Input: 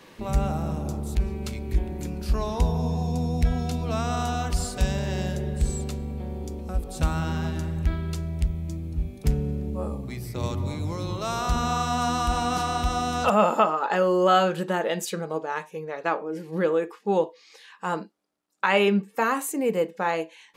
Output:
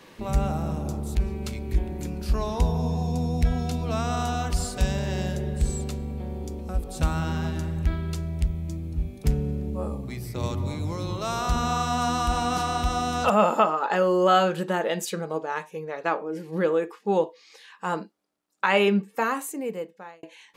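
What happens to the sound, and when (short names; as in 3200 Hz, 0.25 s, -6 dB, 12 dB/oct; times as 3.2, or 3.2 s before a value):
19.06–20.23 fade out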